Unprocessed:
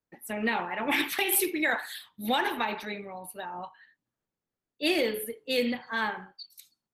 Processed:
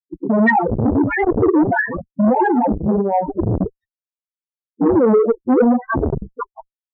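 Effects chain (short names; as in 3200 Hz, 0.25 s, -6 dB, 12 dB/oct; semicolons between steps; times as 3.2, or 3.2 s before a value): 3.44–5.14 tone controls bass +12 dB, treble +11 dB; decimation with a swept rate 32×, swing 160% 1.5 Hz; downsampling 16000 Hz; fuzz box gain 40 dB, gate -45 dBFS; loudest bins only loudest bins 4; core saturation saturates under 450 Hz; gain +6.5 dB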